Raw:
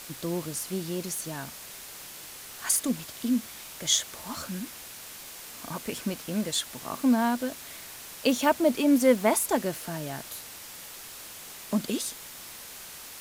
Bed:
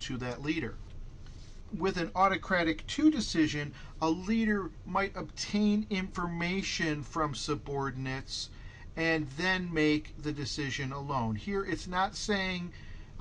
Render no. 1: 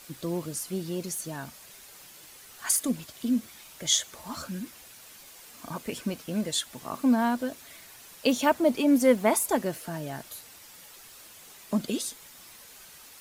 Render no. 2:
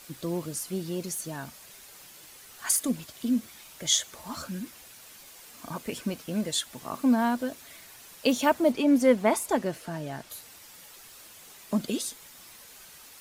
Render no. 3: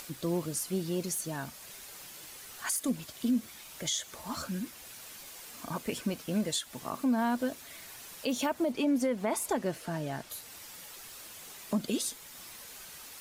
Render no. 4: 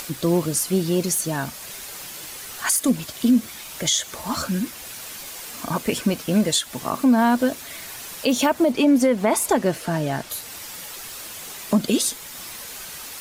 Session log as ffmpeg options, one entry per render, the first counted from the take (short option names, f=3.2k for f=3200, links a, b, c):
-af "afftdn=nr=8:nf=-44"
-filter_complex "[0:a]asettb=1/sr,asplit=3[a][b][c];[a]atrim=end=8.724[d];[b]atrim=start=8.72:end=10.3,asetpts=PTS-STARTPTS,afade=t=in:d=0.004:c=qsin,afade=t=out:st=1.576:d=0.004:c=qsin,highshelf=f=10k:g=-11.5[e];[c]atrim=start=10.296[f];[d][e]acrossfade=d=0.004:c1=hsin:c2=qsin[g];[g][f]acrossfade=d=0.004:c1=qsin:c2=hsin"
-af "acompressor=mode=upward:threshold=-42dB:ratio=2.5,alimiter=limit=-21dB:level=0:latency=1:release=171"
-af "volume=11.5dB"